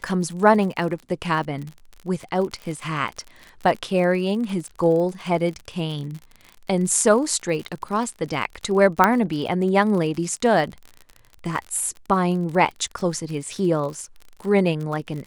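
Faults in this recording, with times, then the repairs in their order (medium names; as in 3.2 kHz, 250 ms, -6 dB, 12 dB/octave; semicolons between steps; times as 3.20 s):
crackle 48 per s -30 dBFS
9.04 s: pop -3 dBFS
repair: de-click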